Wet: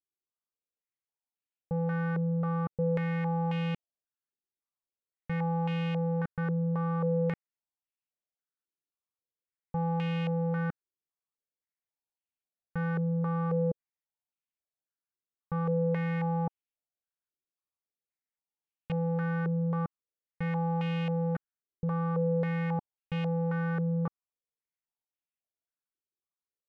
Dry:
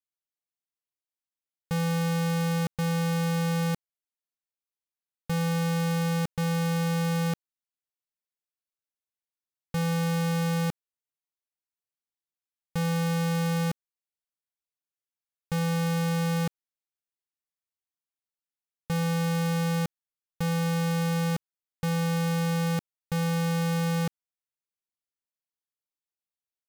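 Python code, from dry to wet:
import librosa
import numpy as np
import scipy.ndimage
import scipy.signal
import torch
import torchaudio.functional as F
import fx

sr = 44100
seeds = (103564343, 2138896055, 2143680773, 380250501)

y = fx.tilt_shelf(x, sr, db=3.5, hz=660.0)
y = fx.filter_held_lowpass(y, sr, hz=3.7, low_hz=380.0, high_hz=2700.0)
y = y * 10.0 ** (-7.0 / 20.0)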